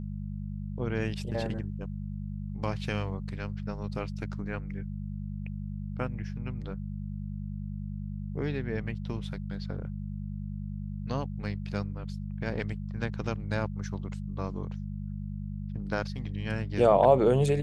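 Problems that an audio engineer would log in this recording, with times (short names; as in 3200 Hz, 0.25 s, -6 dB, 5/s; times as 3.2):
hum 50 Hz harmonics 4 -36 dBFS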